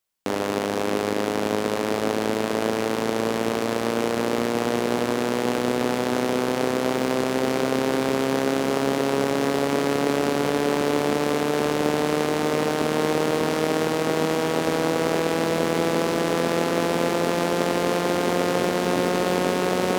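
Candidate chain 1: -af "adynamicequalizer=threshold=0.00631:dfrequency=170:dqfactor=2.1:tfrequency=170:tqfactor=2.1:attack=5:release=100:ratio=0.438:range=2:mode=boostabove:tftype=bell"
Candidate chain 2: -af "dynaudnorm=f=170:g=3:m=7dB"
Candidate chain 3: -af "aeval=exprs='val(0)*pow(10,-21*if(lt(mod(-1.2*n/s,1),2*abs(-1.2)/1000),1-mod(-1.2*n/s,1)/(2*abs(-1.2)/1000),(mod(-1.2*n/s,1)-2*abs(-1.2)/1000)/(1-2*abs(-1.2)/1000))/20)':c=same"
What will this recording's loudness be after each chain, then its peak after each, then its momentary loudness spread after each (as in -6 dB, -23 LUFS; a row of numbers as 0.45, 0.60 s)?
-23.0, -17.5, -30.0 LUFS; -7.0, -2.5, -9.0 dBFS; 2, 2, 10 LU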